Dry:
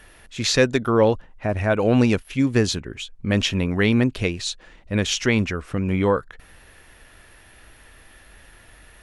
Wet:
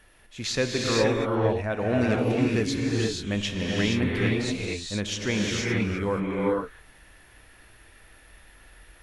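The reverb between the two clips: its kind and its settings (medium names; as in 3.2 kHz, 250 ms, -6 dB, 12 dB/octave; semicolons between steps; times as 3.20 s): gated-style reverb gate 500 ms rising, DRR -3 dB; trim -8.5 dB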